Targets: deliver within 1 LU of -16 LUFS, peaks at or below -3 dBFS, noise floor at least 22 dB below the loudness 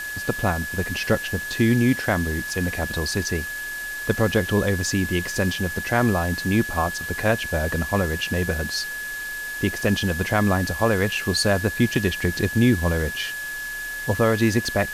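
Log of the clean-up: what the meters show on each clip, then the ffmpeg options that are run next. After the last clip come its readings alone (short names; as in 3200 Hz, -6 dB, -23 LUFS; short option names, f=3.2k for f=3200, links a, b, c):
steady tone 1700 Hz; tone level -29 dBFS; noise floor -31 dBFS; noise floor target -45 dBFS; loudness -23.0 LUFS; peak -7.0 dBFS; loudness target -16.0 LUFS
-> -af "bandreject=f=1.7k:w=30"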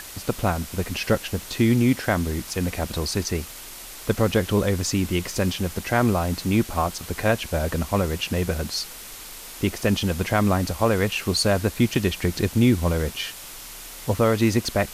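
steady tone none; noise floor -40 dBFS; noise floor target -46 dBFS
-> -af "afftdn=nr=6:nf=-40"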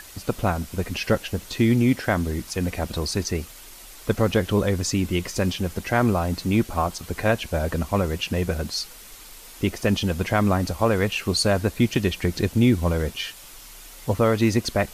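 noise floor -44 dBFS; noise floor target -46 dBFS
-> -af "afftdn=nr=6:nf=-44"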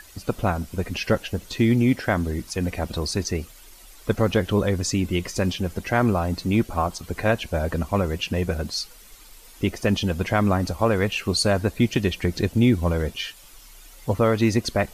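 noise floor -47 dBFS; loudness -24.0 LUFS; peak -7.5 dBFS; loudness target -16.0 LUFS
-> -af "volume=8dB,alimiter=limit=-3dB:level=0:latency=1"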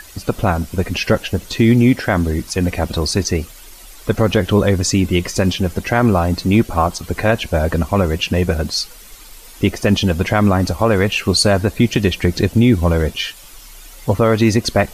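loudness -16.5 LUFS; peak -3.0 dBFS; noise floor -39 dBFS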